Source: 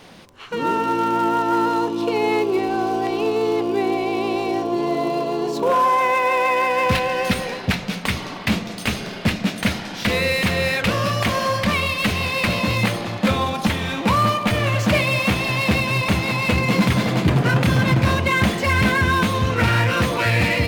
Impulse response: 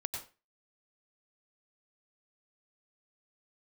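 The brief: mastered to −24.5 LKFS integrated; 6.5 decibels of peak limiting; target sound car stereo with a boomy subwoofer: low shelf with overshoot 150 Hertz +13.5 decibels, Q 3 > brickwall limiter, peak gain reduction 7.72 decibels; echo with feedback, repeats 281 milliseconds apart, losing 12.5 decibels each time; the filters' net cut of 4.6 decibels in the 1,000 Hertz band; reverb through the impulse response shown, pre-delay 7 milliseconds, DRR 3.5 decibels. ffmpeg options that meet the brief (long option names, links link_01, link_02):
-filter_complex "[0:a]equalizer=frequency=1000:width_type=o:gain=-5,alimiter=limit=-13.5dB:level=0:latency=1,aecho=1:1:281|562|843:0.237|0.0569|0.0137,asplit=2[link_01][link_02];[1:a]atrim=start_sample=2205,adelay=7[link_03];[link_02][link_03]afir=irnorm=-1:irlink=0,volume=-4.5dB[link_04];[link_01][link_04]amix=inputs=2:normalize=0,lowshelf=frequency=150:width_type=q:width=3:gain=13.5,volume=-12dB,alimiter=limit=-14dB:level=0:latency=1"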